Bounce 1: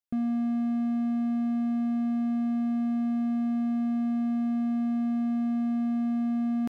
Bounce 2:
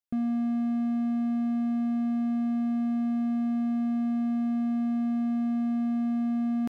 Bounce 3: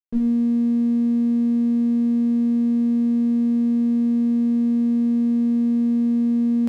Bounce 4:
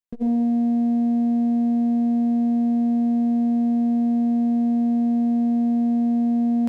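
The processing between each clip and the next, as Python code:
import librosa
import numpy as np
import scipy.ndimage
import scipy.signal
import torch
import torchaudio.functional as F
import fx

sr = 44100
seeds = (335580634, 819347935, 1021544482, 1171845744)

y1 = x
y2 = fx.tube_stage(y1, sr, drive_db=29.0, bias=0.65)
y2 = fx.room_shoebox(y2, sr, seeds[0], volume_m3=230.0, walls='furnished', distance_m=1.3)
y2 = np.sign(y2) * np.maximum(np.abs(y2) - 10.0 ** (-51.5 / 20.0), 0.0)
y2 = F.gain(torch.from_numpy(y2), 6.0).numpy()
y3 = fx.transformer_sat(y2, sr, knee_hz=240.0)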